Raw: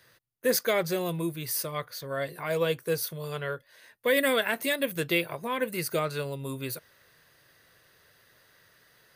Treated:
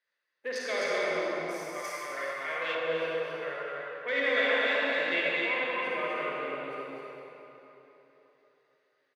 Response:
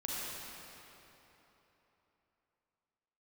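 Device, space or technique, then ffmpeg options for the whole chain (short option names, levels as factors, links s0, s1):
station announcement: -filter_complex "[0:a]afwtdn=0.0126,highpass=460,lowpass=5000,equalizer=f=2100:t=o:w=0.54:g=5.5,aecho=1:1:224.5|256.6:0.316|0.708[s0];[1:a]atrim=start_sample=2205[s1];[s0][s1]afir=irnorm=-1:irlink=0,asettb=1/sr,asplit=3[s2][s3][s4];[s2]atrim=end=1.844[s5];[s3]atrim=start=1.84:end=2.75,asetpts=PTS-STARTPTS,afade=t=in:d=0.004:c=qsin,afade=t=out:st=0.906:d=0.004:c=qsin,tiltshelf=f=970:g=-6[s6];[s4]atrim=start=2.746[s7];[s5][s6]acrossfade=d=0.004:c1=hsin:c2=qsin[s8];[s8][s7]acrossfade=d=0.004:c1=qsin:c2=hsin,volume=0.531"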